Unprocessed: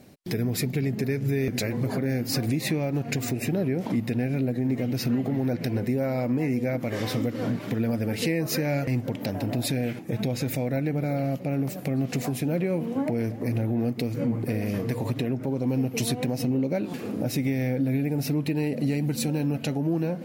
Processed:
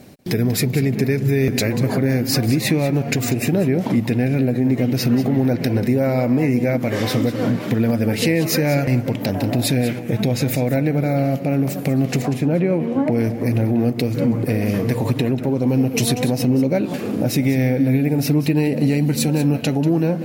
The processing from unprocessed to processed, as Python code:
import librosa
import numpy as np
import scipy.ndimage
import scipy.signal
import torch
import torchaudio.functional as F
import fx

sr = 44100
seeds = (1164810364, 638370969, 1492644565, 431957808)

y = fx.lowpass(x, sr, hz=fx.line((12.21, 1900.0), (13.1, 3300.0)), slope=6, at=(12.21, 13.1), fade=0.02)
y = y + 10.0 ** (-13.5 / 20.0) * np.pad(y, (int(190 * sr / 1000.0), 0))[:len(y)]
y = y * 10.0 ** (8.0 / 20.0)